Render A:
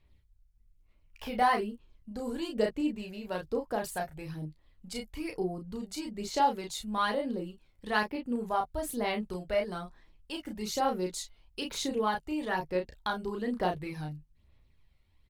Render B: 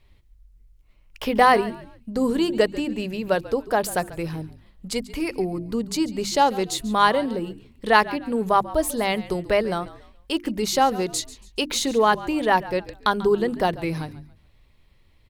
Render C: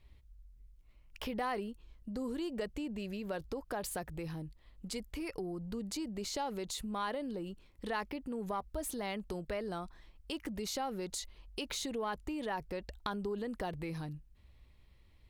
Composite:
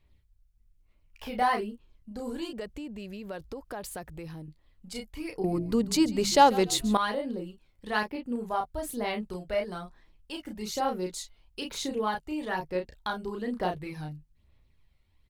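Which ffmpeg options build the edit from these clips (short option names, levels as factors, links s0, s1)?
-filter_complex "[0:a]asplit=3[s0][s1][s2];[s0]atrim=end=2.532[s3];[2:a]atrim=start=2.528:end=4.482[s4];[s1]atrim=start=4.478:end=5.442[s5];[1:a]atrim=start=5.438:end=6.972[s6];[s2]atrim=start=6.968[s7];[s3][s4]acrossfade=d=0.004:c1=hsin:c2=hsin[s8];[s8][s5]acrossfade=d=0.004:c1=hsin:c2=hsin[s9];[s9][s6]acrossfade=d=0.004:c1=hsin:c2=hsin[s10];[s10][s7]acrossfade=d=0.004:c1=hsin:c2=hsin"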